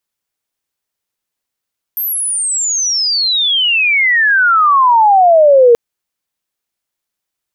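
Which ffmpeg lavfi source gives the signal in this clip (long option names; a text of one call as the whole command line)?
ffmpeg -f lavfi -i "aevalsrc='pow(10,(-15+12*t/3.78)/20)*sin(2*PI*13000*3.78/log(460/13000)*(exp(log(460/13000)*t/3.78)-1))':duration=3.78:sample_rate=44100" out.wav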